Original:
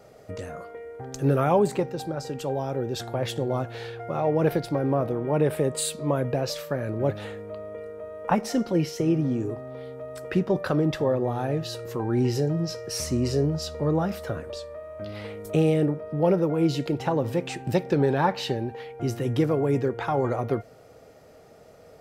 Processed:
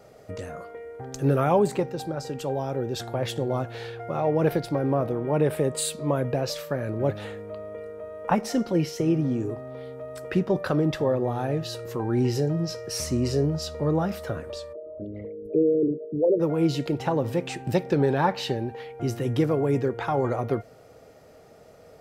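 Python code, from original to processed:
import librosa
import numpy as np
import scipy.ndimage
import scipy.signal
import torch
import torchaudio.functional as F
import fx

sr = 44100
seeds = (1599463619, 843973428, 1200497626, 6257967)

y = fx.envelope_sharpen(x, sr, power=3.0, at=(14.72, 16.39), fade=0.02)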